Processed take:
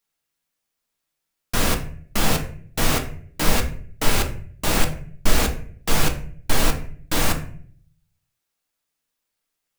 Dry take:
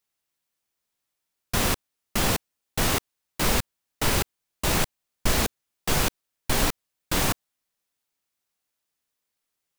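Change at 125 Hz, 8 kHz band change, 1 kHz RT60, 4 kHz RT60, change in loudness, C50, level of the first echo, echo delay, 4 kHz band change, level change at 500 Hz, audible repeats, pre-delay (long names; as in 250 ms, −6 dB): +4.0 dB, +1.5 dB, 0.45 s, 0.35 s, +2.5 dB, 10.5 dB, no echo audible, no echo audible, +2.0 dB, +3.0 dB, no echo audible, 3 ms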